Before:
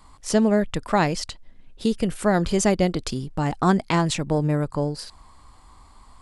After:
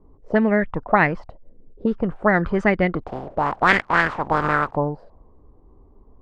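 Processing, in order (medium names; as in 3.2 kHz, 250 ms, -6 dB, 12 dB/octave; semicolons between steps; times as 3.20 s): 3.06–4.75 s: spectral contrast reduction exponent 0.28; touch-sensitive low-pass 400–2000 Hz up, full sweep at -15 dBFS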